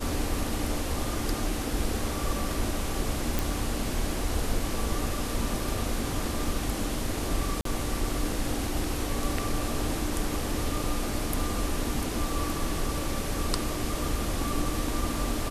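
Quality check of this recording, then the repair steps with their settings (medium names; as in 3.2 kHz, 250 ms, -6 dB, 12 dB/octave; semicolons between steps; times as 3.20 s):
3.39 s: pop
7.61–7.65 s: dropout 43 ms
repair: de-click; interpolate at 7.61 s, 43 ms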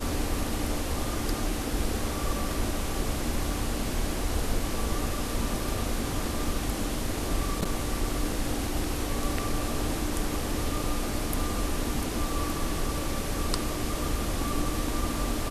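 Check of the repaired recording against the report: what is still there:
nothing left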